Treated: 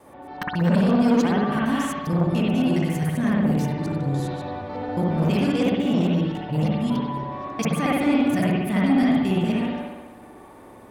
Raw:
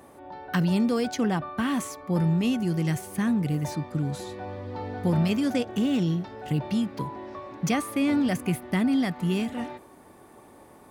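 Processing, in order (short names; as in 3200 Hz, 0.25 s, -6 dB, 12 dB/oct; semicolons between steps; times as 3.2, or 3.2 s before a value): local time reversal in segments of 0.138 s; spring tank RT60 1 s, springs 58 ms, chirp 40 ms, DRR -4.5 dB; core saturation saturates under 430 Hz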